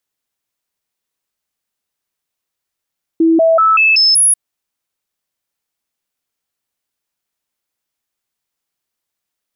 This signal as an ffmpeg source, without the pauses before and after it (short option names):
-f lavfi -i "aevalsrc='0.447*clip(min(mod(t,0.19),0.19-mod(t,0.19))/0.005,0,1)*sin(2*PI*327*pow(2,floor(t/0.19)/1)*mod(t,0.19))':d=1.14:s=44100"